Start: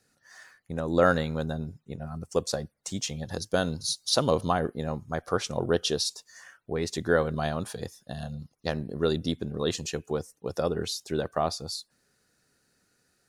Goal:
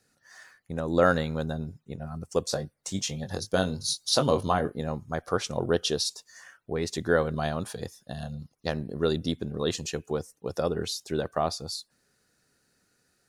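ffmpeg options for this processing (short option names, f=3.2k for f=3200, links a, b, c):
-filter_complex "[0:a]asettb=1/sr,asplit=3[a][b][c];[a]atrim=end=2.494[d];[b]atrim=start=2.49:end=4.81,asetpts=PTS-STARTPTS,afade=t=in:d=0.004:c=qsin,afade=t=out:st=2.316:d=0.004:c=qsin,asplit=2[e][f];[f]adelay=21,volume=-7.5dB[g];[e][g]amix=inputs=2:normalize=0,atrim=end_sample=102312[h];[c]atrim=start=4.806[i];[d][h]acrossfade=d=0.004:c1=hsin:c2=qsin[j];[j][i]acrossfade=d=0.004:c1=qsin:c2=hsin"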